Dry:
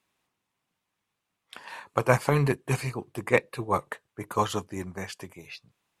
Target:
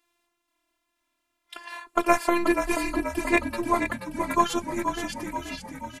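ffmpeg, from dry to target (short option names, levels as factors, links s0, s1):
-filter_complex "[0:a]afftfilt=real='hypot(re,im)*cos(PI*b)':imag='0':win_size=512:overlap=0.75,asplit=8[s0][s1][s2][s3][s4][s5][s6][s7];[s1]adelay=481,afreqshift=-39,volume=0.447[s8];[s2]adelay=962,afreqshift=-78,volume=0.26[s9];[s3]adelay=1443,afreqshift=-117,volume=0.15[s10];[s4]adelay=1924,afreqshift=-156,volume=0.0871[s11];[s5]adelay=2405,afreqshift=-195,volume=0.0507[s12];[s6]adelay=2886,afreqshift=-234,volume=0.0292[s13];[s7]adelay=3367,afreqshift=-273,volume=0.017[s14];[s0][s8][s9][s10][s11][s12][s13][s14]amix=inputs=8:normalize=0,volume=2.11"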